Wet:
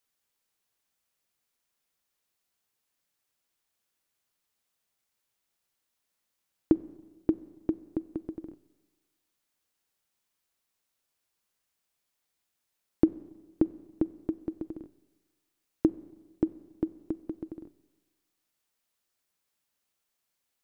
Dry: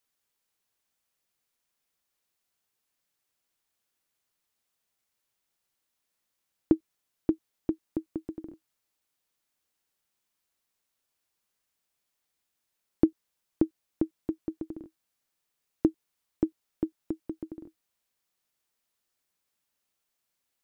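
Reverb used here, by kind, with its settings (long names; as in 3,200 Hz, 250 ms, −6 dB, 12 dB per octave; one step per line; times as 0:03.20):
four-comb reverb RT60 1.3 s, combs from 31 ms, DRR 17.5 dB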